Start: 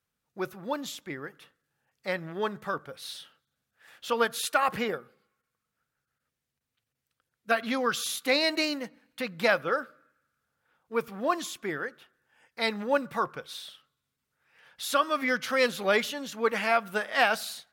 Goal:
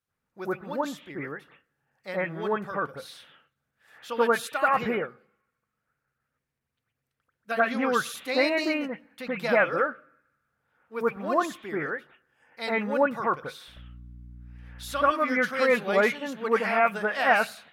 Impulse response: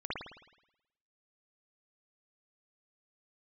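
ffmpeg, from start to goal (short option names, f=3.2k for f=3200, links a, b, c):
-filter_complex "[0:a]asettb=1/sr,asplit=3[a][b][c];[a]atrim=end=13.684[d];[b]atrim=start=13.68:end=15.03,asetpts=PTS-STARTPTS,afade=t=in:d=0.004:c=qsin,afade=t=out:st=1.346:d=0.004:c=qsin,aeval=exprs='val(0)+0.00398*(sin(2*PI*60*n/s)+sin(2*PI*2*60*n/s)/2+sin(2*PI*3*60*n/s)/3+sin(2*PI*4*60*n/s)/4+sin(2*PI*5*60*n/s)/5)':c=same[e];[c]atrim=start=15.026[f];[d][e]acrossfade=d=0.004:c1=hsin:c2=qsin[g];[g][f]acrossfade=d=0.004:c1=qsin:c2=hsin[h];[1:a]atrim=start_sample=2205,atrim=end_sample=4410,asetrate=28665,aresample=44100[i];[h][i]afir=irnorm=-1:irlink=0,volume=-2.5dB"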